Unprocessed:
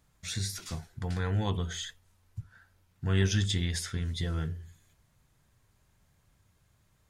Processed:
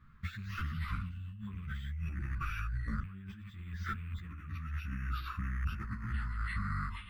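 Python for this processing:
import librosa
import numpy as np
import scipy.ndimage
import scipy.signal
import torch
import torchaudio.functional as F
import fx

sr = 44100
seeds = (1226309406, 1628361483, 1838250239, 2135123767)

y = fx.rattle_buzz(x, sr, strikes_db=-29.0, level_db=-27.0)
y = fx.spec_box(y, sr, start_s=0.72, length_s=0.75, low_hz=300.0, high_hz=2600.0, gain_db=-25)
y = np.repeat(scipy.signal.resample_poly(y, 1, 4), 4)[:len(y)]
y = fx.echo_pitch(y, sr, ms=127, semitones=-5, count=3, db_per_echo=-6.0)
y = fx.high_shelf(y, sr, hz=10000.0, db=10.5)
y = fx.over_compress(y, sr, threshold_db=-41.0, ratio=-1.0)
y = fx.curve_eq(y, sr, hz=(130.0, 190.0, 740.0, 1200.0, 7400.0), db=(0, 3, -26, 5, -26))
y = fx.ensemble(y, sr)
y = F.gain(torch.from_numpy(y), 5.5).numpy()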